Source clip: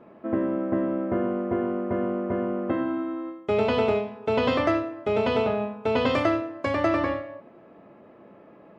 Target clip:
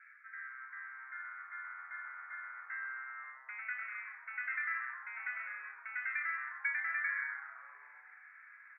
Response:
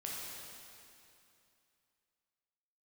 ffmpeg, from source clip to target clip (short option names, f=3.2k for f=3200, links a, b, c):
-filter_complex "[0:a]areverse,acompressor=threshold=-33dB:ratio=6,areverse,asuperpass=centerf=1800:order=12:qfactor=2,asplit=8[a][b][c][d][e][f][g][h];[b]adelay=129,afreqshift=-130,volume=-10.5dB[i];[c]adelay=258,afreqshift=-260,volume=-15.1dB[j];[d]adelay=387,afreqshift=-390,volume=-19.7dB[k];[e]adelay=516,afreqshift=-520,volume=-24.2dB[l];[f]adelay=645,afreqshift=-650,volume=-28.8dB[m];[g]adelay=774,afreqshift=-780,volume=-33.4dB[n];[h]adelay=903,afreqshift=-910,volume=-38dB[o];[a][i][j][k][l][m][n][o]amix=inputs=8:normalize=0,volume=11.5dB"